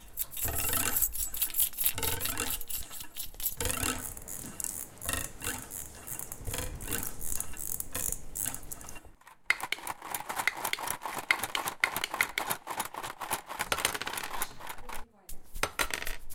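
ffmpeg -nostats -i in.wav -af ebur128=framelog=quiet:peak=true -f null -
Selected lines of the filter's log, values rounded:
Integrated loudness:
  I:         -32.4 LUFS
  Threshold: -42.8 LUFS
Loudness range:
  LRA:         5.8 LU
  Threshold: -53.2 LUFS
  LRA low:   -35.8 LUFS
  LRA high:  -30.0 LUFS
True peak:
  Peak:       -5.9 dBFS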